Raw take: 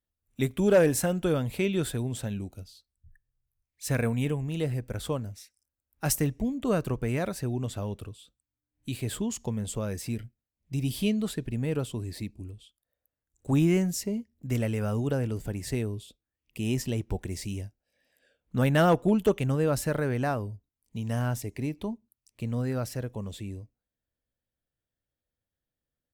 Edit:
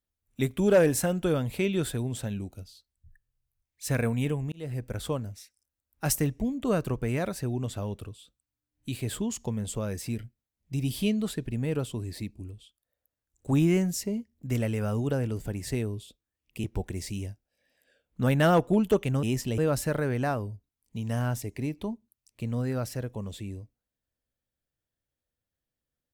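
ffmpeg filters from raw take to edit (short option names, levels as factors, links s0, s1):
-filter_complex "[0:a]asplit=5[s0][s1][s2][s3][s4];[s0]atrim=end=4.52,asetpts=PTS-STARTPTS,afade=t=out:st=4.516:d=0.004:c=hsin[s5];[s1]atrim=start=4.52:end=16.642,asetpts=PTS-STARTPTS,afade=t=in:d=0.3[s6];[s2]atrim=start=16.988:end=19.582[s7];[s3]atrim=start=16.638:end=16.992[s8];[s4]atrim=start=19.578[s9];[s5][s6]concat=n=2:v=0:a=1[s10];[s10][s7]acrossfade=d=0.004:c1=hsin:c2=hsin[s11];[s11][s8]acrossfade=d=0.004:c1=hsin:c2=hsin[s12];[s12][s9]acrossfade=d=0.004:c1=hsin:c2=hsin"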